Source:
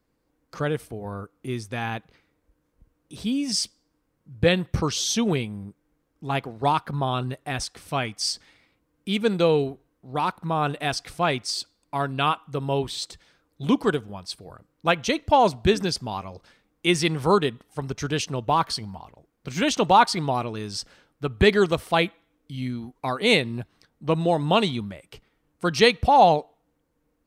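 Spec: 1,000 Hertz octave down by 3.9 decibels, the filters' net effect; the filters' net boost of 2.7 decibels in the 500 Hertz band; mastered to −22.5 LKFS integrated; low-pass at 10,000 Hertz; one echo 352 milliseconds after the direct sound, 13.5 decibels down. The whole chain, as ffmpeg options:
ffmpeg -i in.wav -af "lowpass=10000,equalizer=frequency=500:width_type=o:gain=5,equalizer=frequency=1000:width_type=o:gain=-7.5,aecho=1:1:352:0.211,volume=1.5dB" out.wav

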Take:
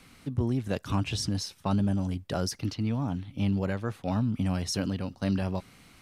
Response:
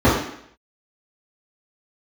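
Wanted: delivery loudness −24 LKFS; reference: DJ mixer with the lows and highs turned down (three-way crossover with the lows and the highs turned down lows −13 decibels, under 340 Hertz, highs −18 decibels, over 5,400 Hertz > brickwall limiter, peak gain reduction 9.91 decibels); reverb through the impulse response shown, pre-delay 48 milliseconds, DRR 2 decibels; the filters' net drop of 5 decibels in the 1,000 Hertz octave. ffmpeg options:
-filter_complex "[0:a]equalizer=frequency=1000:width_type=o:gain=-6.5,asplit=2[link_01][link_02];[1:a]atrim=start_sample=2205,adelay=48[link_03];[link_02][link_03]afir=irnorm=-1:irlink=0,volume=-26.5dB[link_04];[link_01][link_04]amix=inputs=2:normalize=0,acrossover=split=340 5400:gain=0.224 1 0.126[link_05][link_06][link_07];[link_05][link_06][link_07]amix=inputs=3:normalize=0,volume=12.5dB,alimiter=limit=-15dB:level=0:latency=1"

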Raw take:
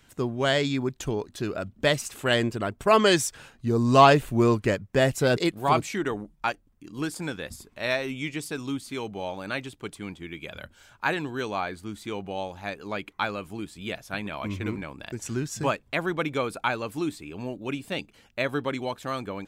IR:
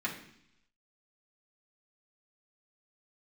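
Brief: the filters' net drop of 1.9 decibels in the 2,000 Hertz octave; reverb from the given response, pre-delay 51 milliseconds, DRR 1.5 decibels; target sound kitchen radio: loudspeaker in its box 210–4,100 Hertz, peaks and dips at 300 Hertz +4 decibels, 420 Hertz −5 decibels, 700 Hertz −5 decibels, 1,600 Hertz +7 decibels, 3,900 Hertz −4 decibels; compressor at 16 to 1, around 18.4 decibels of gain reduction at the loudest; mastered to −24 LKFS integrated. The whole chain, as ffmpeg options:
-filter_complex "[0:a]equalizer=frequency=2000:width_type=o:gain=-8.5,acompressor=threshold=-30dB:ratio=16,asplit=2[link_01][link_02];[1:a]atrim=start_sample=2205,adelay=51[link_03];[link_02][link_03]afir=irnorm=-1:irlink=0,volume=-7dB[link_04];[link_01][link_04]amix=inputs=2:normalize=0,highpass=210,equalizer=frequency=300:width_type=q:width=4:gain=4,equalizer=frequency=420:width_type=q:width=4:gain=-5,equalizer=frequency=700:width_type=q:width=4:gain=-5,equalizer=frequency=1600:width_type=q:width=4:gain=7,equalizer=frequency=3900:width_type=q:width=4:gain=-4,lowpass=frequency=4100:width=0.5412,lowpass=frequency=4100:width=1.3066,volume=11.5dB"

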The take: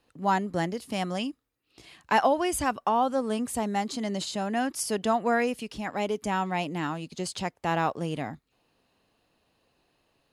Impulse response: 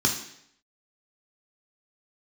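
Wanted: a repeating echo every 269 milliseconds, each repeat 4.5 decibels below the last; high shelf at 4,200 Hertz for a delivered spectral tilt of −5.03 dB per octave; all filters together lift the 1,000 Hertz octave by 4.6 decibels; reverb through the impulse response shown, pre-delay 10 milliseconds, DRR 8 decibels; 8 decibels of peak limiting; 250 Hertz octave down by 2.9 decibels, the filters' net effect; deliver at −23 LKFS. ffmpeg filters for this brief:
-filter_complex "[0:a]equalizer=frequency=250:width_type=o:gain=-4,equalizer=frequency=1000:width_type=o:gain=6.5,highshelf=frequency=4200:gain=-5.5,alimiter=limit=-15dB:level=0:latency=1,aecho=1:1:269|538|807|1076|1345|1614|1883|2152|2421:0.596|0.357|0.214|0.129|0.0772|0.0463|0.0278|0.0167|0.01,asplit=2[link_01][link_02];[1:a]atrim=start_sample=2205,adelay=10[link_03];[link_02][link_03]afir=irnorm=-1:irlink=0,volume=-19.5dB[link_04];[link_01][link_04]amix=inputs=2:normalize=0,volume=3dB"

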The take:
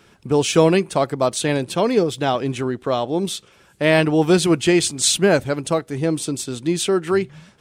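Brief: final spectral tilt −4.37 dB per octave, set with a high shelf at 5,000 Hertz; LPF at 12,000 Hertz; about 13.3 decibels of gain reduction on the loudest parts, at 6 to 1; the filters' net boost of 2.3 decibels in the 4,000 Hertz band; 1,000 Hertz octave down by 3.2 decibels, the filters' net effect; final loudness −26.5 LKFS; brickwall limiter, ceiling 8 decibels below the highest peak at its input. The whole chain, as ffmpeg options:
ffmpeg -i in.wav -af "lowpass=12000,equalizer=frequency=1000:width_type=o:gain=-4.5,equalizer=frequency=4000:width_type=o:gain=5,highshelf=frequency=5000:gain=-4.5,acompressor=threshold=-26dB:ratio=6,volume=5dB,alimiter=limit=-17dB:level=0:latency=1" out.wav

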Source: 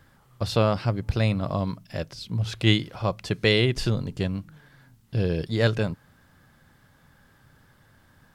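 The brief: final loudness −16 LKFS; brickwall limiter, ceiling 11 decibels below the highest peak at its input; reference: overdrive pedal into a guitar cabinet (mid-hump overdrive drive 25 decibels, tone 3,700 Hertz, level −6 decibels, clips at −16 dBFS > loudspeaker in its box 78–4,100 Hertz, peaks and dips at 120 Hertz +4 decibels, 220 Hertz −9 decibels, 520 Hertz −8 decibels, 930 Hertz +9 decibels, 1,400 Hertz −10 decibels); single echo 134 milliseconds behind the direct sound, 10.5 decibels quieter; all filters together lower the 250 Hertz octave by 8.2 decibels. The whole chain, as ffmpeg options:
ffmpeg -i in.wav -filter_complex "[0:a]equalizer=frequency=250:width_type=o:gain=-8,alimiter=limit=-18dB:level=0:latency=1,aecho=1:1:134:0.299,asplit=2[link_01][link_02];[link_02]highpass=frequency=720:poles=1,volume=25dB,asoftclip=type=tanh:threshold=-16dB[link_03];[link_01][link_03]amix=inputs=2:normalize=0,lowpass=frequency=3700:poles=1,volume=-6dB,highpass=78,equalizer=frequency=120:width_type=q:width=4:gain=4,equalizer=frequency=220:width_type=q:width=4:gain=-9,equalizer=frequency=520:width_type=q:width=4:gain=-8,equalizer=frequency=930:width_type=q:width=4:gain=9,equalizer=frequency=1400:width_type=q:width=4:gain=-10,lowpass=frequency=4100:width=0.5412,lowpass=frequency=4100:width=1.3066,volume=10.5dB" out.wav

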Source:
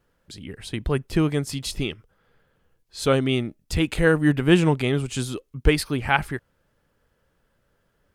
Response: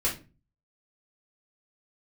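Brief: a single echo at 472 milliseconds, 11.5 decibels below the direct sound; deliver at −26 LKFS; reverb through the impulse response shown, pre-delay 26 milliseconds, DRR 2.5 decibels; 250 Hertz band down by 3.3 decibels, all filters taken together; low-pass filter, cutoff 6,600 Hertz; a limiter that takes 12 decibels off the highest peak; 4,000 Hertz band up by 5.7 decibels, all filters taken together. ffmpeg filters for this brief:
-filter_complex "[0:a]lowpass=6600,equalizer=frequency=250:width_type=o:gain=-5,equalizer=frequency=4000:width_type=o:gain=8,alimiter=limit=-13dB:level=0:latency=1,aecho=1:1:472:0.266,asplit=2[link_01][link_02];[1:a]atrim=start_sample=2205,adelay=26[link_03];[link_02][link_03]afir=irnorm=-1:irlink=0,volume=-11dB[link_04];[link_01][link_04]amix=inputs=2:normalize=0,volume=-2dB"

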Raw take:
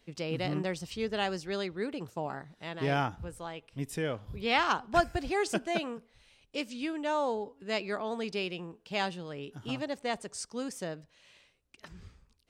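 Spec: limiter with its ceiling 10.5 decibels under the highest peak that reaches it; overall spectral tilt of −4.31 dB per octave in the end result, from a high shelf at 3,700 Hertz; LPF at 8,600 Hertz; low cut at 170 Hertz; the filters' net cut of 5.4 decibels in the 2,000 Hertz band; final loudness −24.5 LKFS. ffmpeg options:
ffmpeg -i in.wav -af "highpass=170,lowpass=8600,equalizer=frequency=2000:width_type=o:gain=-8.5,highshelf=frequency=3700:gain=4,volume=12.5dB,alimiter=limit=-11dB:level=0:latency=1" out.wav

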